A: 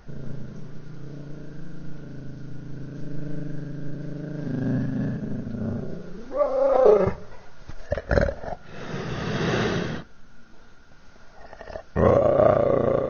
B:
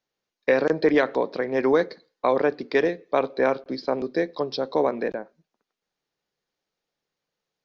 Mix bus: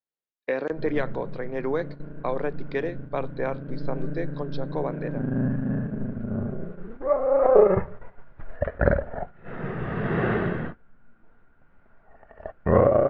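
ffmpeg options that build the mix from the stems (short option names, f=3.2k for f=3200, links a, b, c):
-filter_complex "[0:a]lowpass=f=2.2k:w=0.5412,lowpass=f=2.2k:w=1.3066,adelay=700,volume=0dB[a];[1:a]equalizer=f=5.3k:t=o:w=0.62:g=-11.5,volume=-7dB[b];[a][b]amix=inputs=2:normalize=0,agate=range=-9dB:threshold=-35dB:ratio=16:detection=peak"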